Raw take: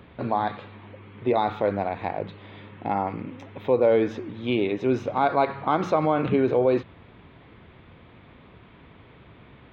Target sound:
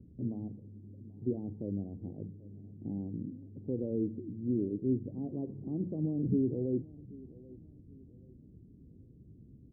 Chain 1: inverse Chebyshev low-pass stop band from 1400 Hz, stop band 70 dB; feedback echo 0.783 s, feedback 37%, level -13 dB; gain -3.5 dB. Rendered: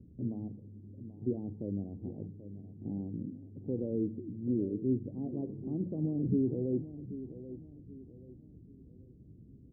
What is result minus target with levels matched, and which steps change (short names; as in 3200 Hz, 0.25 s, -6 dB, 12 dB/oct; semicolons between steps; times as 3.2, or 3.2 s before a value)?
echo-to-direct +7.5 dB
change: feedback echo 0.783 s, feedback 37%, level -20.5 dB